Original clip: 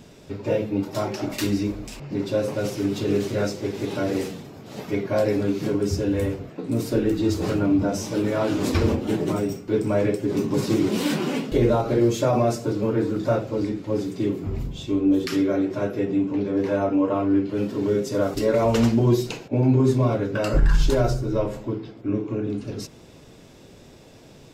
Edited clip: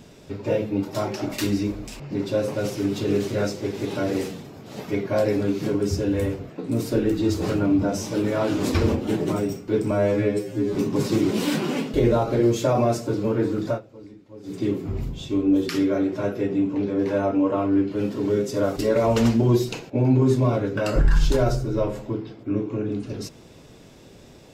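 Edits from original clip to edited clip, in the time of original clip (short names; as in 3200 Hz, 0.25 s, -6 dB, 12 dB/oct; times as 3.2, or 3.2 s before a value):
9.91–10.33 stretch 2×
13.26–14.13 dip -18 dB, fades 0.12 s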